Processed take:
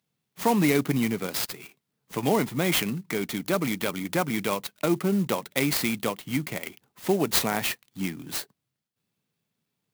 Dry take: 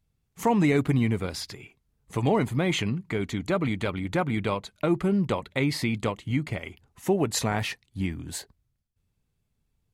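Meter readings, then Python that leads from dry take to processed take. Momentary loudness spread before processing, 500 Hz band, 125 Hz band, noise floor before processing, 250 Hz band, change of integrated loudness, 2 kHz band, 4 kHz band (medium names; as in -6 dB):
12 LU, 0.0 dB, -4.5 dB, -77 dBFS, -0.5 dB, +0.5 dB, +2.0 dB, +3.5 dB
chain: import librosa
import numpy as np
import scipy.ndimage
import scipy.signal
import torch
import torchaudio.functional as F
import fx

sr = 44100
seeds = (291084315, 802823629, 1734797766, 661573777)

y = scipy.signal.sosfilt(scipy.signal.butter(4, 150.0, 'highpass', fs=sr, output='sos'), x)
y = fx.peak_eq(y, sr, hz=4700.0, db=8.0, octaves=1.7)
y = fx.clock_jitter(y, sr, seeds[0], jitter_ms=0.043)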